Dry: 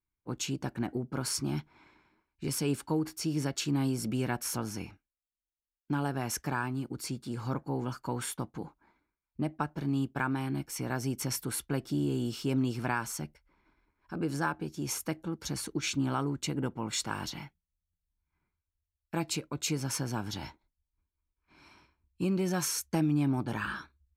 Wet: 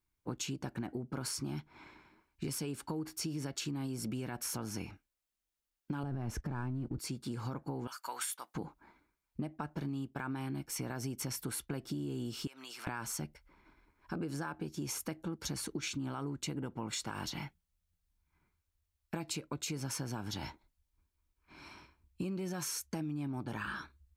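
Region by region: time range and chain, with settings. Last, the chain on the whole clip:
6.03–6.99 s: companding laws mixed up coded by mu + gate -43 dBFS, range -11 dB + tilt EQ -3.5 dB/octave
7.87–8.55 s: high-pass 1.1 kHz + treble shelf 6.3 kHz +7.5 dB
12.47–12.87 s: high-pass 1.2 kHz + compression, threshold -48 dBFS
whole clip: peak limiter -23.5 dBFS; compression 6:1, threshold -41 dBFS; trim +5 dB

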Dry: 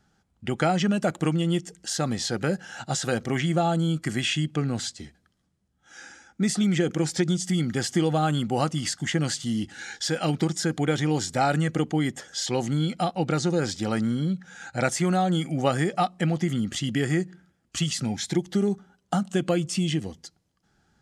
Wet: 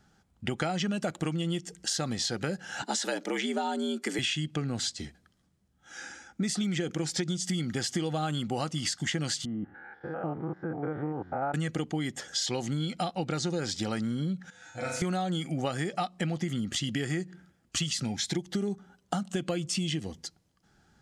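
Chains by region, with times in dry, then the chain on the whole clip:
2.82–4.19 s: high-pass 170 Hz + frequency shift +74 Hz
9.45–11.54 s: spectrogram pixelated in time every 100 ms + low-pass 1.3 kHz 24 dB/octave + bass shelf 340 Hz -10.5 dB
14.50–15.02 s: feedback comb 100 Hz, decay 0.33 s, harmonics odd, mix 90% + flutter echo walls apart 6.5 m, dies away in 0.72 s
whole clip: dynamic bell 4.2 kHz, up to +5 dB, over -42 dBFS, Q 0.7; compression 4:1, threshold -31 dBFS; trim +2 dB

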